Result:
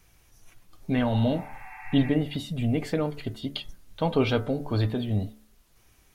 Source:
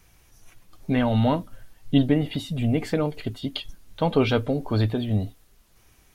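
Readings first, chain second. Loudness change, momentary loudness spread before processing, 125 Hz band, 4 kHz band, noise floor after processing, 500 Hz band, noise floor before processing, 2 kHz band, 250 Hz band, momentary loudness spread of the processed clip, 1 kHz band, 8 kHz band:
-3.0 dB, 11 LU, -2.5 dB, -2.5 dB, -61 dBFS, -3.0 dB, -58 dBFS, -2.0 dB, -3.0 dB, 14 LU, -4.0 dB, -2.5 dB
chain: spectral replace 1.14–2.07 s, 750–2700 Hz both; de-hum 72.5 Hz, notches 29; trim -2.5 dB

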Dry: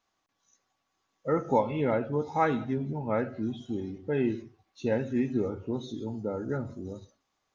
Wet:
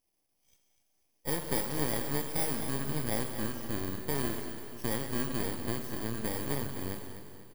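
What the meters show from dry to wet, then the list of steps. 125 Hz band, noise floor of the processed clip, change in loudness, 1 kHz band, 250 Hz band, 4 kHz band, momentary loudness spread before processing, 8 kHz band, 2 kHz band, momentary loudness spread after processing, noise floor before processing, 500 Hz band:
-2.5 dB, -77 dBFS, -3.5 dB, -8.0 dB, -6.0 dB, +9.0 dB, 10 LU, no reading, 0.0 dB, 8 LU, -79 dBFS, -8.0 dB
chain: bit-reversed sample order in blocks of 32 samples; compression 2.5:1, threshold -31 dBFS, peak gain reduction 8.5 dB; plate-style reverb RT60 2.2 s, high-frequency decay 1×, DRR 5.5 dB; half-wave rectifier; feedback delay 246 ms, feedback 47%, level -11.5 dB; trim +2.5 dB

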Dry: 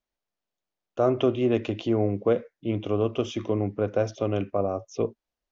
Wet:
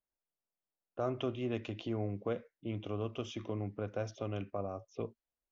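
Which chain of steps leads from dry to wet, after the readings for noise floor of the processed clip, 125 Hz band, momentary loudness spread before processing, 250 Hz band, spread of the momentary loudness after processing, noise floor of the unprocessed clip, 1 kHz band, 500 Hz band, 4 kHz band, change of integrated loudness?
under -85 dBFS, -9.5 dB, 8 LU, -12.5 dB, 6 LU, under -85 dBFS, -11.0 dB, -13.5 dB, -9.0 dB, -12.5 dB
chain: level-controlled noise filter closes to 1.6 kHz, open at -22 dBFS; dynamic bell 420 Hz, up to -6 dB, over -32 dBFS, Q 0.74; trim -8.5 dB

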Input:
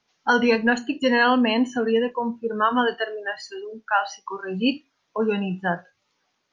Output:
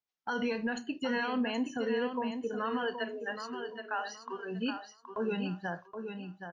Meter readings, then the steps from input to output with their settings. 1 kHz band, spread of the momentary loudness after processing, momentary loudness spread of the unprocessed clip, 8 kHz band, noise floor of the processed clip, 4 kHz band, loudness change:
-13.5 dB, 9 LU, 14 LU, no reading, -65 dBFS, -12.0 dB, -12.5 dB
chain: gate -37 dBFS, range -17 dB; peak limiter -15.5 dBFS, peak gain reduction 8.5 dB; feedback delay 773 ms, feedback 25%, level -7.5 dB; trim -9 dB

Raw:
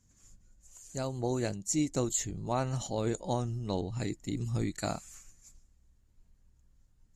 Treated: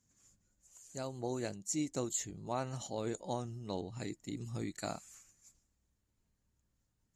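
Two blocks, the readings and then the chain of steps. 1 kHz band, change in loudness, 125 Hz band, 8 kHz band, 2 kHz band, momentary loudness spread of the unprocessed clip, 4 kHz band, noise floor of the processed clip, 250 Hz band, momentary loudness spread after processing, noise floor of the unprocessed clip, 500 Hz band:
-5.0 dB, -6.5 dB, -9.5 dB, -5.0 dB, -5.0 dB, 9 LU, -5.0 dB, -81 dBFS, -6.5 dB, 9 LU, -67 dBFS, -5.5 dB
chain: high-pass 160 Hz 6 dB/octave; trim -5 dB

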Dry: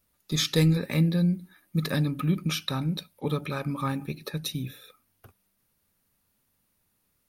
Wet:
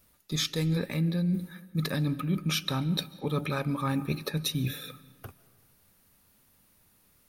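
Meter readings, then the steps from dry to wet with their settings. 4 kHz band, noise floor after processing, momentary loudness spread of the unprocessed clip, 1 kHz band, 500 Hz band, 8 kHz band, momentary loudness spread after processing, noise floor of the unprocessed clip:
-1.0 dB, -65 dBFS, 11 LU, -0.5 dB, -2.5 dB, -1.5 dB, 11 LU, -74 dBFS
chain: reverse; compression 6:1, threshold -35 dBFS, peak gain reduction 16.5 dB; reverse; algorithmic reverb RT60 1.6 s, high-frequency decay 0.55×, pre-delay 105 ms, DRR 18.5 dB; trim +8.5 dB

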